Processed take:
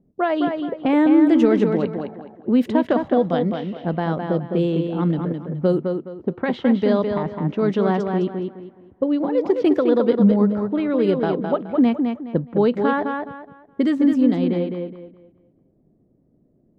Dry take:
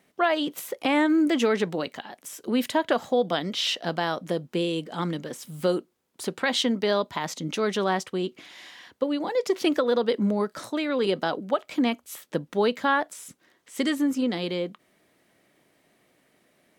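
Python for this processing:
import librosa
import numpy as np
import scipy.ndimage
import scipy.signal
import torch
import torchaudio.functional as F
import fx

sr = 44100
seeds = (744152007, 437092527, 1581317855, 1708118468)

y = fx.tilt_eq(x, sr, slope=-4.0)
y = fx.env_lowpass(y, sr, base_hz=370.0, full_db=-14.0)
y = fx.echo_tape(y, sr, ms=210, feedback_pct=31, wet_db=-4, lp_hz=4100.0, drive_db=6.0, wow_cents=9)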